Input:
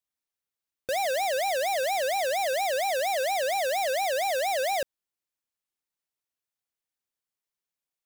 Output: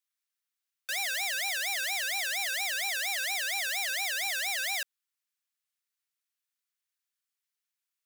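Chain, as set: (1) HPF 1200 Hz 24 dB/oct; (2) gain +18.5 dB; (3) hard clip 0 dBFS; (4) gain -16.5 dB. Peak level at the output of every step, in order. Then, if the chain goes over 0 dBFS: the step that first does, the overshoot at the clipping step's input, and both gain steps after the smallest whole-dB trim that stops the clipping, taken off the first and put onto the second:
-22.0, -3.5, -3.5, -20.0 dBFS; no overload

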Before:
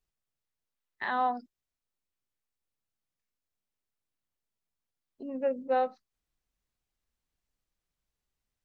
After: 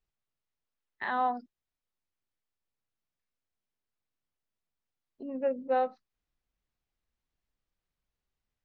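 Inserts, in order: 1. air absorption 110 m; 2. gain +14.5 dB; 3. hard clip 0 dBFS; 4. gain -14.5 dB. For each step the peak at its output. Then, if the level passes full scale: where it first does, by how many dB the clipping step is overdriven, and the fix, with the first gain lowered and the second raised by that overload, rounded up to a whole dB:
-17.5, -3.0, -3.0, -17.5 dBFS; no overload

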